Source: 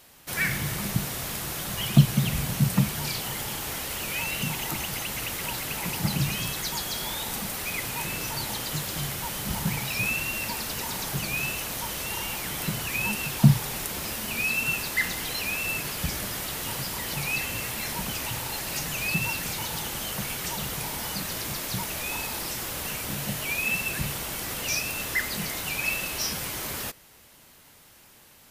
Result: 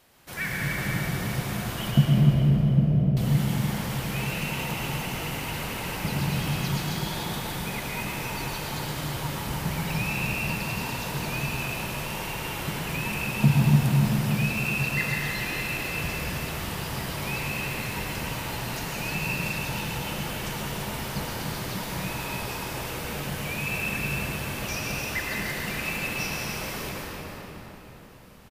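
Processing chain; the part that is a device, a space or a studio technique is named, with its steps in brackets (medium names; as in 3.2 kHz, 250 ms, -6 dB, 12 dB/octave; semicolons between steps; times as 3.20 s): 1.91–3.17 s: steep low-pass 720 Hz 96 dB/octave; feedback delay 294 ms, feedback 39%, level -9 dB; swimming-pool hall (reverberation RT60 4.2 s, pre-delay 102 ms, DRR -3.5 dB; treble shelf 3.8 kHz -7 dB); trim -3.5 dB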